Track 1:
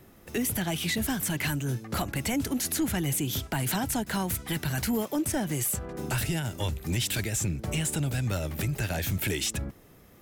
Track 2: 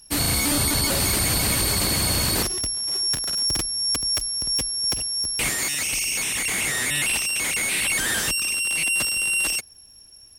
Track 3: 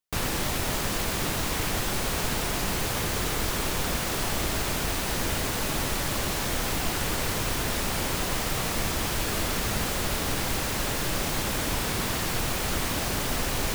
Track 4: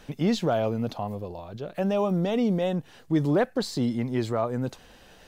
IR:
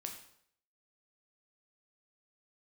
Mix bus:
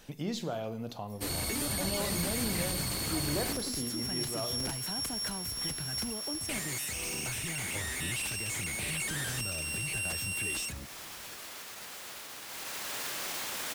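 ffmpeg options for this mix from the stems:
-filter_complex "[0:a]adelay=1150,volume=-3.5dB[link_01];[1:a]adelay=1100,volume=-12.5dB[link_02];[2:a]highpass=frequency=1100:poles=1,alimiter=level_in=0.5dB:limit=-24dB:level=0:latency=1,volume=-0.5dB,adelay=2050,afade=type=in:start_time=12.47:duration=0.59:silence=0.237137,asplit=2[link_03][link_04];[link_04]volume=-7.5dB[link_05];[3:a]highshelf=frequency=4600:gain=11.5,volume=-9.5dB,asplit=2[link_06][link_07];[link_07]volume=-4.5dB[link_08];[link_01][link_03][link_06]amix=inputs=3:normalize=0,acompressor=threshold=-39dB:ratio=4,volume=0dB[link_09];[4:a]atrim=start_sample=2205[link_10];[link_05][link_08]amix=inputs=2:normalize=0[link_11];[link_11][link_10]afir=irnorm=-1:irlink=0[link_12];[link_02][link_09][link_12]amix=inputs=3:normalize=0"

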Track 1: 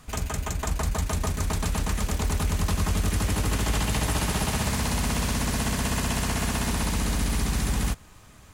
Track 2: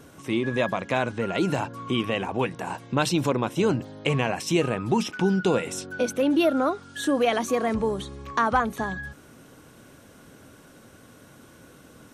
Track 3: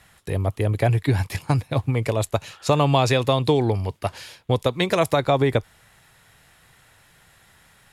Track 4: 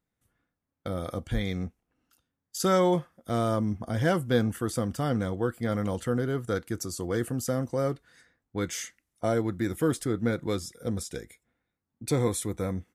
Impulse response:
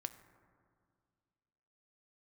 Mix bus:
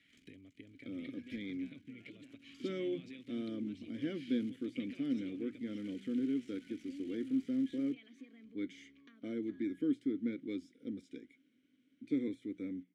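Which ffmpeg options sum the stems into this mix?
-filter_complex "[0:a]highshelf=frequency=4700:gain=10.5,aeval=exprs='max(val(0),0)':channel_layout=same,volume=-18dB[link_01];[1:a]acompressor=threshold=-28dB:ratio=6,adelay=700,volume=-13dB[link_02];[2:a]alimiter=limit=-13.5dB:level=0:latency=1,acompressor=threshold=-24dB:ratio=6,volume=-2dB[link_03];[3:a]deesser=0.8,equalizer=frequency=380:width=0.79:gain=8.5,bandreject=frequency=60:width_type=h:width=6,bandreject=frequency=120:width_type=h:width=6,bandreject=frequency=180:width_type=h:width=6,volume=-4.5dB[link_04];[link_01][link_03]amix=inputs=2:normalize=0,acompressor=threshold=-38dB:ratio=5,volume=0dB[link_05];[link_02][link_04][link_05]amix=inputs=3:normalize=0,asplit=3[link_06][link_07][link_08];[link_06]bandpass=frequency=270:width_type=q:width=8,volume=0dB[link_09];[link_07]bandpass=frequency=2290:width_type=q:width=8,volume=-6dB[link_10];[link_08]bandpass=frequency=3010:width_type=q:width=8,volume=-9dB[link_11];[link_09][link_10][link_11]amix=inputs=3:normalize=0,equalizer=frequency=5100:width=0.32:gain=3"

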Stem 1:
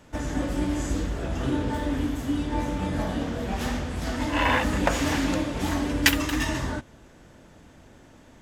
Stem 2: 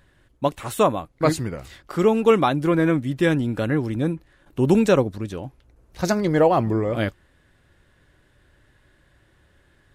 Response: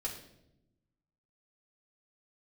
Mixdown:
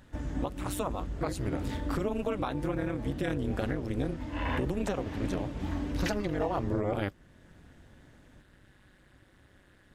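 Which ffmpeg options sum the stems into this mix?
-filter_complex "[0:a]acrossover=split=4300[link_01][link_02];[link_02]acompressor=threshold=-50dB:ratio=4:attack=1:release=60[link_03];[link_01][link_03]amix=inputs=2:normalize=0,lowshelf=frequency=290:gain=9.5,volume=-12.5dB[link_04];[1:a]acompressor=threshold=-21dB:ratio=2,tremolo=f=200:d=0.947,volume=2.5dB[link_05];[link_04][link_05]amix=inputs=2:normalize=0,alimiter=limit=-20dB:level=0:latency=1:release=449"

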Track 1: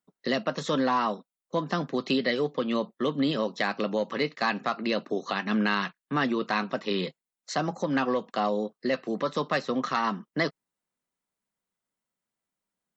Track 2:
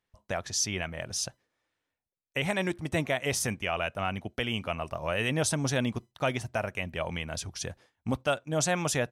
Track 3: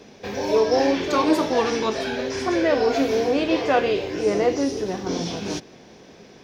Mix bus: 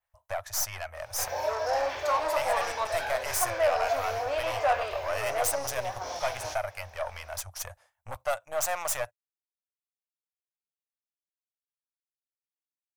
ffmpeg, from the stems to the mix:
ffmpeg -i stem1.wav -i stem2.wav -i stem3.wav -filter_complex "[1:a]adynamicequalizer=threshold=0.00447:dfrequency=7800:dqfactor=1.1:tfrequency=7800:tqfactor=1.1:attack=5:release=100:ratio=0.375:range=2.5:mode=boostabove:tftype=bell,aeval=exprs='(tanh(22.4*val(0)+0.75)-tanh(0.75))/22.4':channel_layout=same,volume=0dB[link_01];[2:a]asoftclip=type=tanh:threshold=-17dB,adelay=950,volume=-6dB[link_02];[link_01][link_02]amix=inputs=2:normalize=0,firequalizer=gain_entry='entry(100,0);entry(160,-27);entry(410,-16);entry(590,7);entry(3400,-3);entry(13000,10)':delay=0.05:min_phase=1" out.wav

